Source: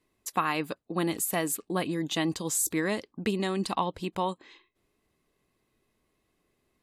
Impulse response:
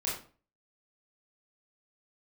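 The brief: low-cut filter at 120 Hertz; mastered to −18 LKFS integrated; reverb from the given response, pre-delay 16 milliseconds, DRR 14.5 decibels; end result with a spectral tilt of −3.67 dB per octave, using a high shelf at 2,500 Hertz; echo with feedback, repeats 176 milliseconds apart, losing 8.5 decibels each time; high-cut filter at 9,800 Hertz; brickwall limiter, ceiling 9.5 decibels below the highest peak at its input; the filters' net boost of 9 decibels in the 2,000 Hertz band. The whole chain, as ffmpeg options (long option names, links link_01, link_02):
-filter_complex "[0:a]highpass=120,lowpass=9800,equalizer=frequency=2000:width_type=o:gain=8,highshelf=frequency=2500:gain=5.5,alimiter=limit=-18dB:level=0:latency=1,aecho=1:1:176|352|528|704:0.376|0.143|0.0543|0.0206,asplit=2[link_01][link_02];[1:a]atrim=start_sample=2205,adelay=16[link_03];[link_02][link_03]afir=irnorm=-1:irlink=0,volume=-19.5dB[link_04];[link_01][link_04]amix=inputs=2:normalize=0,volume=11dB"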